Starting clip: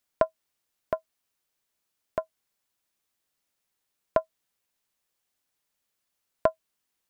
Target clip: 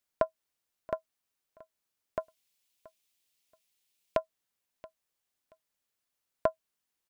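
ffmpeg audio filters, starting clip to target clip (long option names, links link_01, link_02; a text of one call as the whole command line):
ffmpeg -i in.wav -filter_complex "[0:a]asettb=1/sr,asplit=3[link_01][link_02][link_03];[link_01]atrim=end=2.204[link_04];[link_02]atrim=start=2.2:end=4.18,asetpts=PTS-STARTPTS,afade=type=in:duration=0.004:curve=qsin,afade=type=out:start_time=1.976:duration=0.004:curve=qsin,highshelf=frequency=2000:width_type=q:width=1.5:gain=7.5[link_05];[link_03]atrim=start=4.176[link_06];[link_04][link_05]acrossfade=duration=0.004:curve1=hsin:curve2=qsin[link_07];[link_07][link_06]acrossfade=duration=0.004:curve1=qsin:curve2=hsin,aecho=1:1:678|1356:0.0891|0.0196,volume=-4.5dB" out.wav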